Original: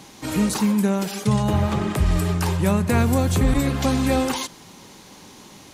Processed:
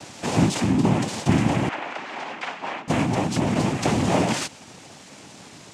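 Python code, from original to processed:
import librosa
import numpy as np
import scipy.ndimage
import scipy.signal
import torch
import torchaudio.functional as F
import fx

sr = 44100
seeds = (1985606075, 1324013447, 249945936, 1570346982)

y = fx.rider(x, sr, range_db=10, speed_s=0.5)
y = fx.noise_vocoder(y, sr, seeds[0], bands=4)
y = fx.bandpass_edges(y, sr, low_hz=780.0, high_hz=3100.0, at=(1.69, 2.88))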